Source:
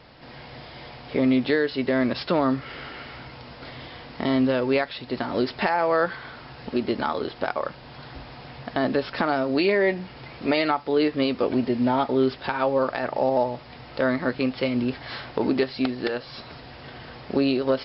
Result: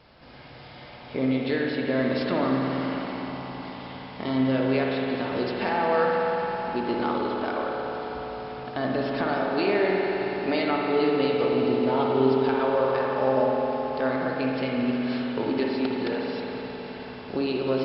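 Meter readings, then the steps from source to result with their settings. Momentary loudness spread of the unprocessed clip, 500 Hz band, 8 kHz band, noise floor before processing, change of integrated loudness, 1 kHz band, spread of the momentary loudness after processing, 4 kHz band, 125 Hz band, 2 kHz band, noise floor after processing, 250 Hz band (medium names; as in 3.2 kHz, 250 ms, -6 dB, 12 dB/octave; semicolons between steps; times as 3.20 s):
19 LU, 0.0 dB, no reading, -44 dBFS, -1.5 dB, 0.0 dB, 12 LU, -2.5 dB, 0.0 dB, -2.0 dB, -44 dBFS, -1.5 dB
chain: band-stop 1.9 kHz, Q 19; on a send: echo with a slow build-up 90 ms, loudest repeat 5, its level -17.5 dB; on the sum: spring tank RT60 3.8 s, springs 53 ms, chirp 30 ms, DRR -1.5 dB; trim -5.5 dB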